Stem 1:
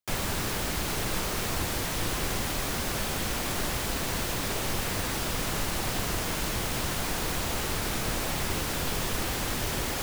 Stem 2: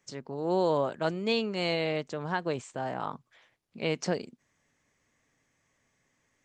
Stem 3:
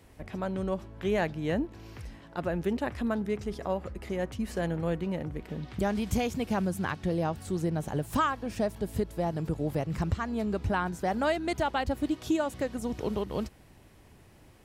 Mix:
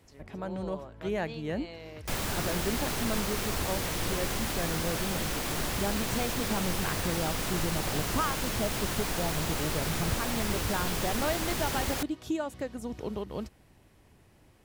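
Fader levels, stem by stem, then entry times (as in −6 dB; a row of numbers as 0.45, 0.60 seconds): −2.0, −16.0, −4.0 decibels; 2.00, 0.00, 0.00 seconds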